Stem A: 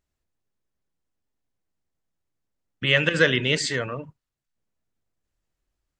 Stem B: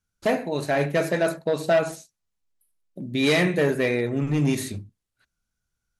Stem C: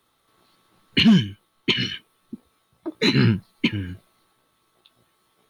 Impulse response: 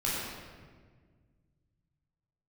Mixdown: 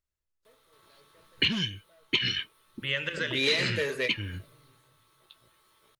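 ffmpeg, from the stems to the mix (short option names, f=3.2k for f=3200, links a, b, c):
-filter_complex "[0:a]volume=-9dB,asplit=3[a][b][c];[b]volume=-19dB[d];[1:a]equalizer=f=450:t=o:w=0.32:g=9,adelay=200,volume=3dB[e];[2:a]adelay=450,volume=1.5dB[f];[c]apad=whole_len=273379[g];[e][g]sidechaingate=range=-45dB:threshold=-46dB:ratio=16:detection=peak[h];[3:a]atrim=start_sample=2205[i];[d][i]afir=irnorm=-1:irlink=0[j];[a][h][f][j]amix=inputs=4:normalize=0,asuperstop=centerf=740:order=4:qfactor=5.3,equalizer=f=220:t=o:w=1.3:g=-9,acrossover=split=2000|6400[k][l][m];[k]acompressor=threshold=-32dB:ratio=4[n];[l]acompressor=threshold=-25dB:ratio=4[o];[m]acompressor=threshold=-56dB:ratio=4[p];[n][o][p]amix=inputs=3:normalize=0"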